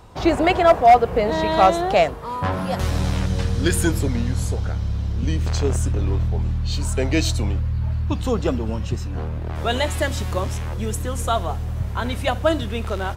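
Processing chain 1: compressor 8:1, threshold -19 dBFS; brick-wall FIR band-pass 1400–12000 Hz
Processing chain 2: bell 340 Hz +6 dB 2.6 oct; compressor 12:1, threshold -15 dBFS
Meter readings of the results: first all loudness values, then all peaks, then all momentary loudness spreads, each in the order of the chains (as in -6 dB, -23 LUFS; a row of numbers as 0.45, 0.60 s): -34.5, -22.0 LUFS; -15.0, -5.5 dBFS; 16, 5 LU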